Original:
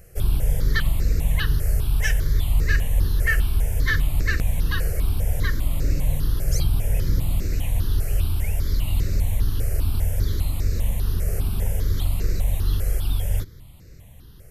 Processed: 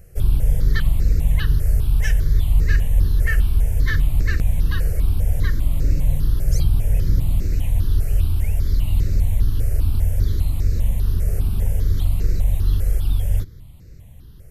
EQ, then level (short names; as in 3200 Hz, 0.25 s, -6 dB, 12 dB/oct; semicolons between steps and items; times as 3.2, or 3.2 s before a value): low shelf 300 Hz +7.5 dB; -3.5 dB